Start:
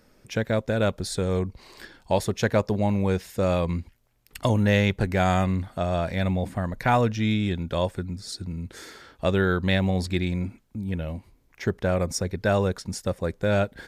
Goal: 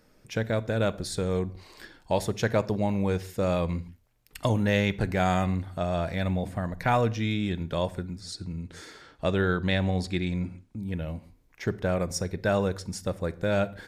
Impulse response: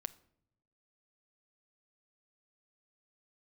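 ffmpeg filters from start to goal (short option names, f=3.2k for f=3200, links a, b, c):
-filter_complex "[0:a]asettb=1/sr,asplit=3[a][b][c];[a]atrim=end=8.214[d];[b]atrim=start=8.21:end=10.79,asetpts=PTS-STARTPTS,afade=t=in:d=0.004:c=qsin,afade=t=out:st=2.576:d=0.004:c=qsin,lowpass=9.9k[e];[c]atrim=start=10.786[f];[d][e]acrossfade=d=0.004:c1=hsin:c2=qsin[g];[g][f]acrossfade=d=0.004:c1=qsin:c2=hsin[h];[1:a]atrim=start_sample=2205,afade=t=out:st=0.23:d=0.01,atrim=end_sample=10584[i];[h][i]afir=irnorm=-1:irlink=0"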